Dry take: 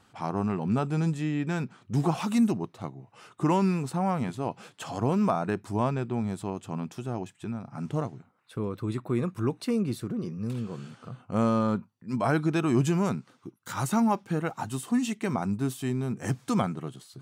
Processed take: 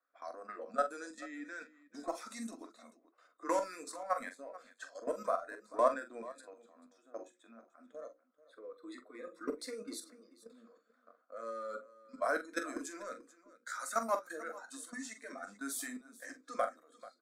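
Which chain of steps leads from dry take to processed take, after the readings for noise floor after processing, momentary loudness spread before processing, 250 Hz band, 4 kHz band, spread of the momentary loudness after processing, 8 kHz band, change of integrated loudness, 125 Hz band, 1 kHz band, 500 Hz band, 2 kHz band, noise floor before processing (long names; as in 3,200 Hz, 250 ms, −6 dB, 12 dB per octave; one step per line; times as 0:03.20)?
−75 dBFS, 12 LU, −20.5 dB, −9.5 dB, 18 LU, −4.0 dB, −11.0 dB, below −40 dB, −7.0 dB, −7.0 dB, −4.5 dB, −63 dBFS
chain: noise reduction from a noise print of the clip's start 13 dB
inverse Chebyshev high-pass filter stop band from 180 Hz, stop band 40 dB
in parallel at −9.5 dB: gain into a clipping stage and back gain 32.5 dB
on the sum: mains-hum notches 60/120/180/240/300/360/420/480/540 Hz
harmonic and percussive parts rebalanced harmonic −4 dB
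output level in coarse steps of 15 dB
sample-and-hold tremolo
phaser with its sweep stopped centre 580 Hz, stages 8
low-pass that shuts in the quiet parts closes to 2,700 Hz, open at −43 dBFS
flanger 0.36 Hz, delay 7 ms, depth 4.2 ms, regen −64%
on a send: multi-tap delay 44/438 ms −10/−18.5 dB
on the sum: level +11.5 dB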